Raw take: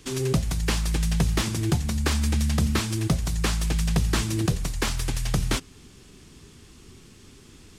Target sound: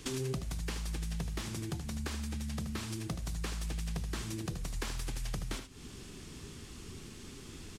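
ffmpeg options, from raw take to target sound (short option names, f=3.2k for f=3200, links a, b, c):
-filter_complex "[0:a]acompressor=threshold=-36dB:ratio=8,asplit=2[a][b];[b]aecho=0:1:77:0.355[c];[a][c]amix=inputs=2:normalize=0,volume=1dB"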